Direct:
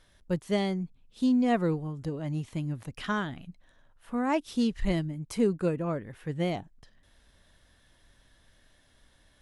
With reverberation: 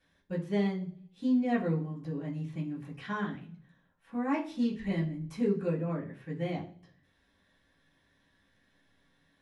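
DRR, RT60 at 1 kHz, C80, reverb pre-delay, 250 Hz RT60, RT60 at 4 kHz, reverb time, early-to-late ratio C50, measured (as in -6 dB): -11.5 dB, 0.40 s, 15.0 dB, 3 ms, 0.70 s, 0.55 s, 0.45 s, 10.5 dB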